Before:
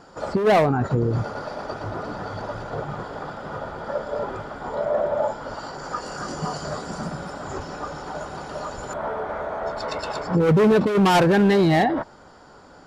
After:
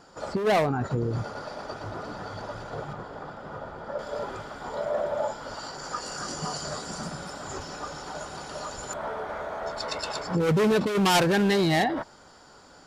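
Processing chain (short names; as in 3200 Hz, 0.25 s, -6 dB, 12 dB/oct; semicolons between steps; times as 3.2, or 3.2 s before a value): high shelf 2600 Hz +6.5 dB, from 2.93 s -2 dB, from 3.99 s +11.5 dB; gain -6 dB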